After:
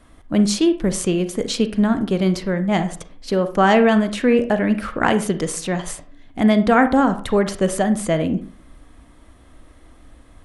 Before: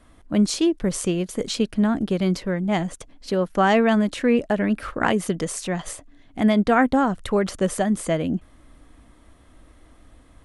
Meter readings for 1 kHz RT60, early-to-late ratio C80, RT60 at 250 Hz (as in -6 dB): 0.45 s, 17.5 dB, 0.45 s